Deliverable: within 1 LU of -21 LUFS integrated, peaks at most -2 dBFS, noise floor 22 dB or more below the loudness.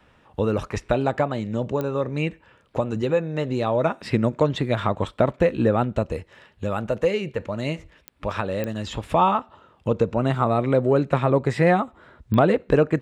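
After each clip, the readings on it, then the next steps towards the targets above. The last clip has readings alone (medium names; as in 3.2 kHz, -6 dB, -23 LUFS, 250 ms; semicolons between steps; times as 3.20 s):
clicks found 4; loudness -23.5 LUFS; peak level -7.0 dBFS; loudness target -21.0 LUFS
-> de-click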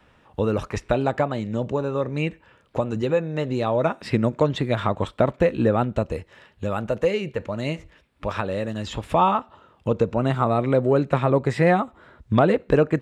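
clicks found 0; loudness -23.5 LUFS; peak level -7.0 dBFS; loudness target -21.0 LUFS
-> trim +2.5 dB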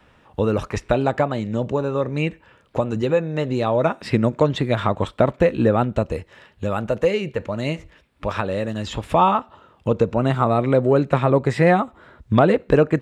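loudness -21.0 LUFS; peak level -4.5 dBFS; noise floor -56 dBFS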